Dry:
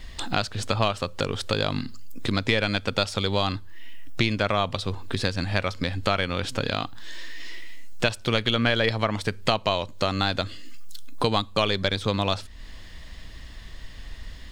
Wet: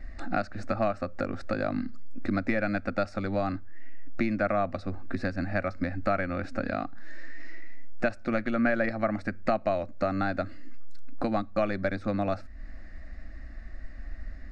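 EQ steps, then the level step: tape spacing loss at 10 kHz 29 dB; static phaser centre 650 Hz, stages 8; +2.0 dB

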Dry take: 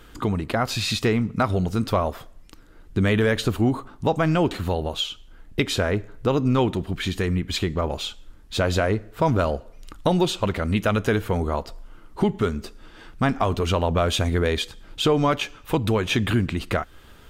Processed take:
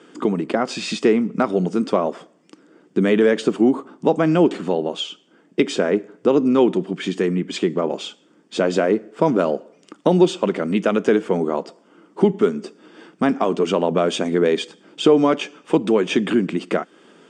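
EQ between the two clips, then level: Chebyshev band-pass 170–8400 Hz, order 4; peaking EQ 350 Hz +8.5 dB 1.5 oct; band-stop 4 kHz, Q 6.2; 0.0 dB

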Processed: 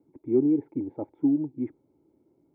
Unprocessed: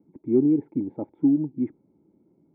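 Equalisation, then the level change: peaking EQ 190 Hz -14 dB 0.55 oct; 0.0 dB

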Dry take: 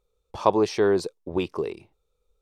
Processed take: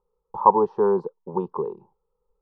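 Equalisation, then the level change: resonant low-pass 920 Hz, resonance Q 4.9; peaking EQ 210 Hz +4.5 dB 1.8 oct; static phaser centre 440 Hz, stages 8; -2.5 dB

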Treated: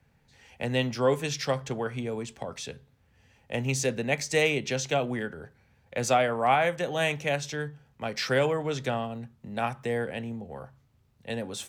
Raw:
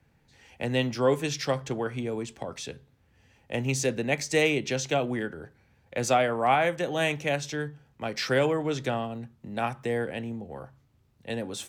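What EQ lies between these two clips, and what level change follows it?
peaking EQ 320 Hz -6.5 dB 0.34 oct; 0.0 dB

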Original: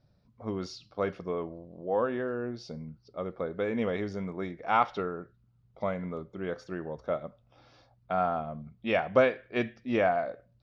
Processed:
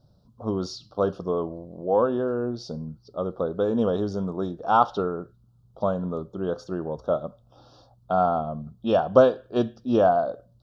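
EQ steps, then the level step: Butterworth band-stop 2.1 kHz, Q 1; +7.0 dB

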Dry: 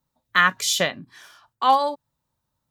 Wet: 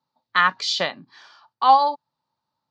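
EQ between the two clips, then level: cabinet simulation 170–5300 Hz, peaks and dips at 860 Hz +9 dB, 1.2 kHz +4 dB, 4.5 kHz +10 dB; -3.0 dB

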